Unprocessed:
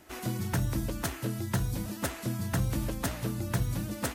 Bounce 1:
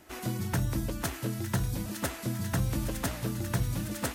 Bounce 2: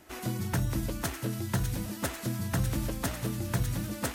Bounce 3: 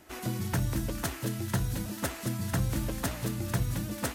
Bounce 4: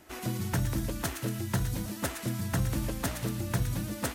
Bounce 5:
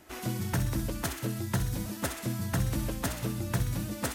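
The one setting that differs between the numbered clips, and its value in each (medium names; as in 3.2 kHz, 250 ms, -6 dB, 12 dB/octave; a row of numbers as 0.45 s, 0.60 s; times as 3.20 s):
feedback echo behind a high-pass, time: 908 ms, 601 ms, 222 ms, 115 ms, 64 ms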